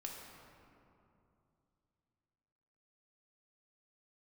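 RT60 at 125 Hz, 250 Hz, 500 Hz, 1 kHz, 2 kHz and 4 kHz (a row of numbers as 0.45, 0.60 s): 3.6, 3.2, 2.8, 2.6, 2.0, 1.3 s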